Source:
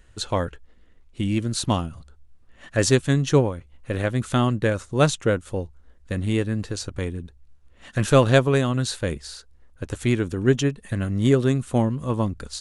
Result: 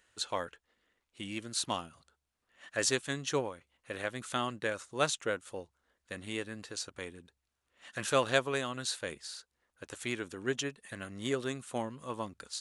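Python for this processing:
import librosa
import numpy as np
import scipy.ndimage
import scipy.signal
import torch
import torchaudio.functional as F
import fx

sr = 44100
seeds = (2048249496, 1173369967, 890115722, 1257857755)

y = fx.highpass(x, sr, hz=940.0, slope=6)
y = y * librosa.db_to_amplitude(-5.5)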